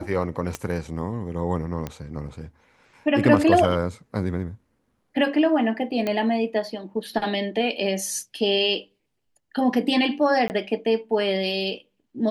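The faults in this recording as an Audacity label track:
0.550000	0.550000	pop -13 dBFS
1.870000	1.870000	pop -16 dBFS
6.070000	6.070000	pop -13 dBFS
10.480000	10.500000	dropout 19 ms

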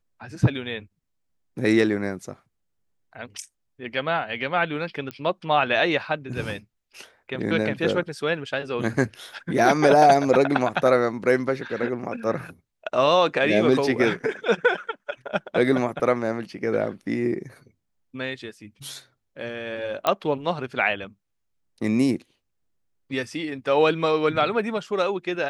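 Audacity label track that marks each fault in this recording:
5.110000	5.110000	pop -18 dBFS
20.070000	20.070000	pop -8 dBFS

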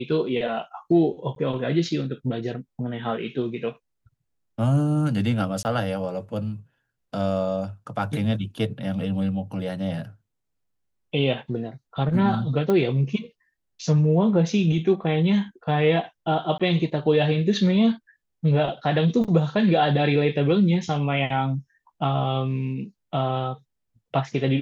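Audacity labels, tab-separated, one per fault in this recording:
1.350000	1.360000	dropout
5.630000	5.650000	dropout 19 ms
12.700000	12.700000	pop -13 dBFS
16.580000	16.600000	dropout 16 ms
19.240000	19.250000	dropout 6.4 ms

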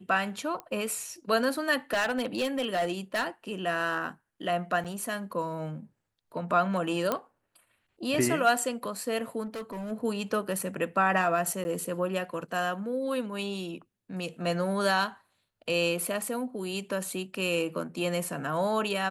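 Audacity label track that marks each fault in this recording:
0.600000	0.600000	pop -24 dBFS
1.930000	3.280000	clipped -23.5 dBFS
4.840000	4.850000	dropout 7 ms
7.120000	7.120000	pop -13 dBFS
9.450000	9.920000	clipped -33.5 dBFS
11.640000	11.650000	dropout 10 ms

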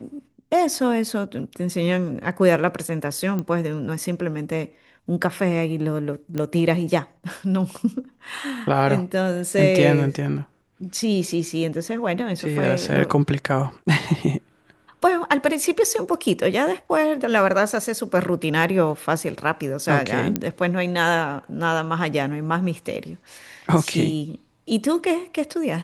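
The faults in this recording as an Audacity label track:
3.390000	3.390000	pop -15 dBFS
6.380000	6.380000	pop -14 dBFS
20.360000	20.360000	pop -7 dBFS

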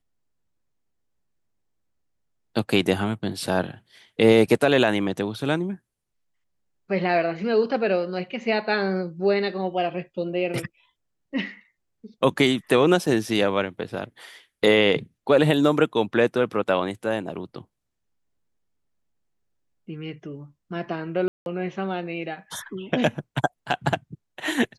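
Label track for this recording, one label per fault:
13.060000	13.060000	dropout 3.9 ms
21.280000	21.460000	dropout 181 ms

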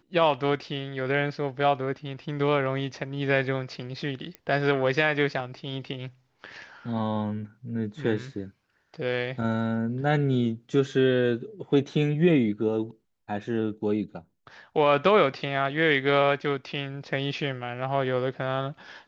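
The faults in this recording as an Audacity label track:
4.350000	4.350000	pop -22 dBFS

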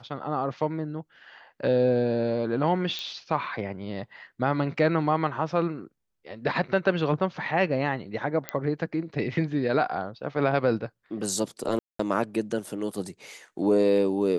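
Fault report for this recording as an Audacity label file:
2.990000	2.990000	pop -19 dBFS
8.490000	8.490000	pop -12 dBFS
11.790000	11.990000	dropout 204 ms

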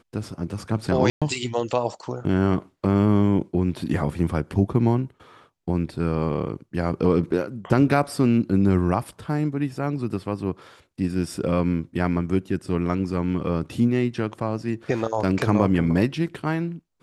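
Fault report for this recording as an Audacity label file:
1.100000	1.220000	dropout 116 ms

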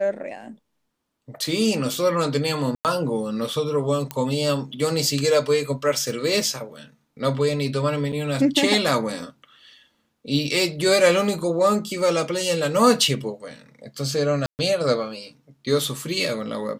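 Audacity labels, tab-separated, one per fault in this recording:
2.750000	2.850000	dropout 98 ms
4.110000	4.110000	pop -11 dBFS
8.120000	8.130000	dropout 7.3 ms
14.460000	14.590000	dropout 129 ms

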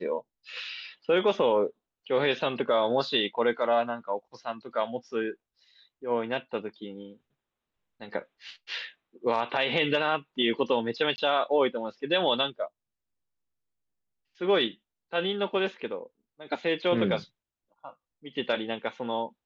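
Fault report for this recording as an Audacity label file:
11.160000	11.180000	dropout 20 ms

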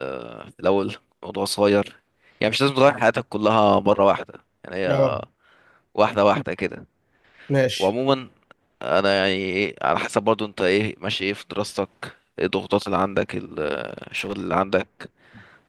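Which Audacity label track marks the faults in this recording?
13.870000	14.430000	clipped -21.5 dBFS

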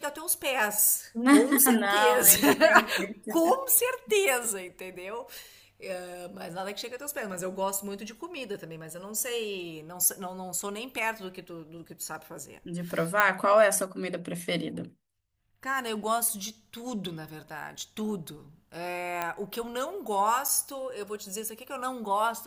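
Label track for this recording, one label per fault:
13.200000	13.200000	pop -8 dBFS
19.220000	19.220000	pop -15 dBFS
20.480000	20.490000	dropout 6.4 ms

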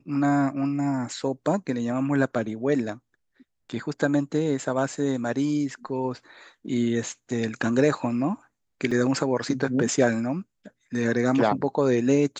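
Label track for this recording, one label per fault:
8.910000	8.910000	dropout 4.4 ms

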